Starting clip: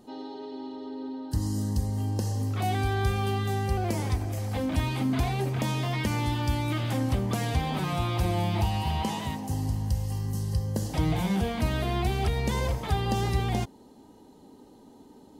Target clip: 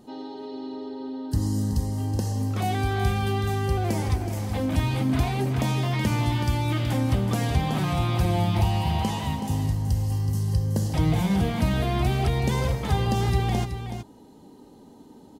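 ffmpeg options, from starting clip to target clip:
ffmpeg -i in.wav -af "equalizer=frequency=140:width=1.1:gain=3.5,aecho=1:1:374:0.355,volume=1.5dB" out.wav

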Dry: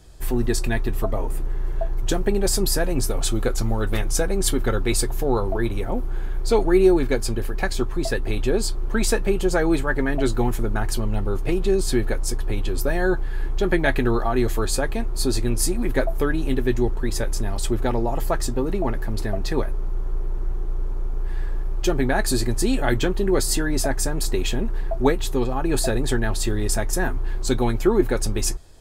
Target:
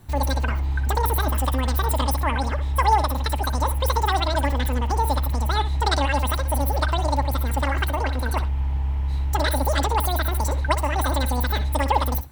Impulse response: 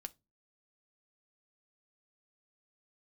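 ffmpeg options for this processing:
-filter_complex "[0:a]asetrate=103194,aresample=44100,asplit=2[link_01][link_02];[1:a]atrim=start_sample=2205,adelay=61[link_03];[link_02][link_03]afir=irnorm=-1:irlink=0,volume=-7dB[link_04];[link_01][link_04]amix=inputs=2:normalize=0,volume=-2dB"

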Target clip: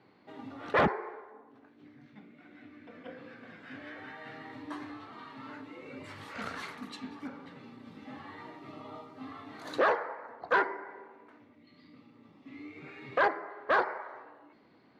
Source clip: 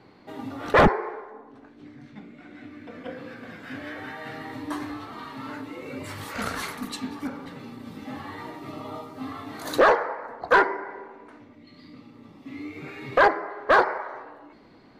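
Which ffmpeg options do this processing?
ffmpeg -i in.wav -af "highpass=100,lowpass=2800,aemphasis=mode=production:type=75fm,volume=-8.5dB" out.wav

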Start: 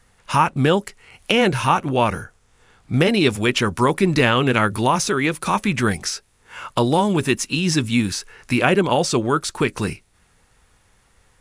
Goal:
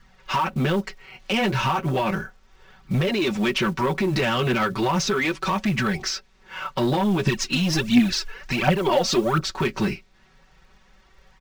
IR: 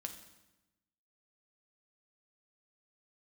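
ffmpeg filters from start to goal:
-filter_complex "[0:a]lowpass=frequency=5600:width=0.5412,lowpass=frequency=5600:width=1.3066,aecho=1:1:5.3:0.91,alimiter=limit=-10.5dB:level=0:latency=1:release=74,flanger=delay=0.6:depth=9.4:regen=-31:speed=0.35:shape=triangular,asoftclip=type=tanh:threshold=-19.5dB,acrusher=bits=7:mode=log:mix=0:aa=0.000001,asettb=1/sr,asplit=3[link_01][link_02][link_03];[link_01]atrim=end=7.264[link_04];[link_02]atrim=start=7.26:end=9.44,asetpts=PTS-STARTPTS,afade=type=in:duration=0.004:curve=qsin,afade=type=out:start_time=2.176:duration=0.004:curve=qsin,aphaser=in_gain=1:out_gain=1:delay=4.6:decay=0.64:speed=1.4:type=triangular[link_05];[link_03]atrim=start=9.436[link_06];[link_04][link_05]acrossfade=duration=0.004:curve1=hsin:curve2=qsin[link_07];[link_07][link_06]acrossfade=duration=0.004:curve1=qsin:curve2=hsin,volume=3.5dB"

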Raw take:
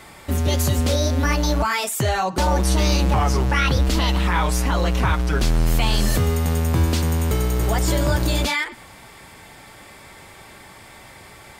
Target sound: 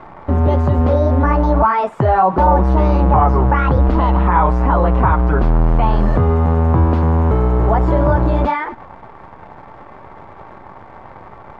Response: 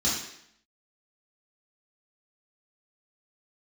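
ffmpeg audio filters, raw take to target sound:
-filter_complex "[0:a]asplit=2[link_01][link_02];[link_02]alimiter=limit=-17.5dB:level=0:latency=1,volume=2dB[link_03];[link_01][link_03]amix=inputs=2:normalize=0,acrusher=bits=6:dc=4:mix=0:aa=0.000001,lowpass=frequency=1000:width_type=q:width=1.8,volume=1dB"

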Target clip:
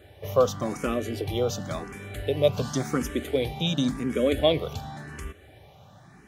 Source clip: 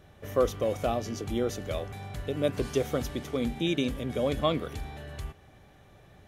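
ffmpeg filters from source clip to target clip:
ffmpeg -i in.wav -filter_complex "[0:a]highpass=70,asplit=2[link_01][link_02];[link_02]afreqshift=0.92[link_03];[link_01][link_03]amix=inputs=2:normalize=1,volume=7.5dB" out.wav

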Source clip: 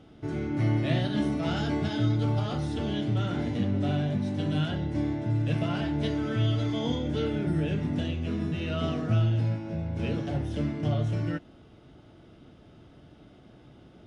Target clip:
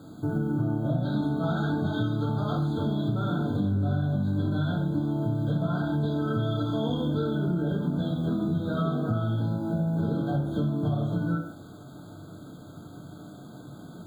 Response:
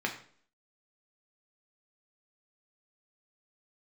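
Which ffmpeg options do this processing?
-filter_complex "[0:a]asetnsamples=nb_out_samples=441:pad=0,asendcmd='1.03 equalizer g 2',equalizer=frequency=5000:width_type=o:width=2.3:gain=-13[link_01];[1:a]atrim=start_sample=2205,atrim=end_sample=6174,asetrate=35280,aresample=44100[link_02];[link_01][link_02]afir=irnorm=-1:irlink=0,acrusher=bits=8:mix=0:aa=0.000001,acompressor=threshold=-24dB:ratio=5,afftfilt=real='re*eq(mod(floor(b*sr/1024/1600),2),0)':imag='im*eq(mod(floor(b*sr/1024/1600),2),0)':win_size=1024:overlap=0.75"

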